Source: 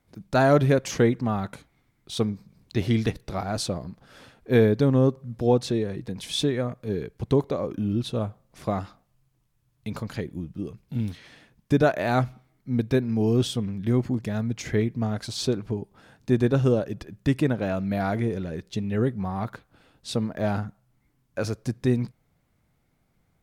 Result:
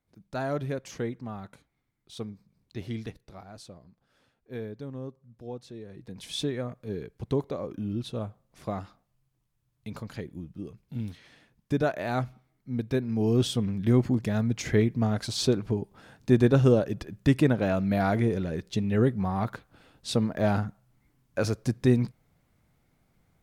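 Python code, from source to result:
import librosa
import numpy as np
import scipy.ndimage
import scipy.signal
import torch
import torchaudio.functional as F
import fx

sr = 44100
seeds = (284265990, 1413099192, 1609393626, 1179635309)

y = fx.gain(x, sr, db=fx.line((2.98, -12.0), (3.57, -18.5), (5.72, -18.5), (6.24, -6.0), (12.82, -6.0), (13.69, 1.0)))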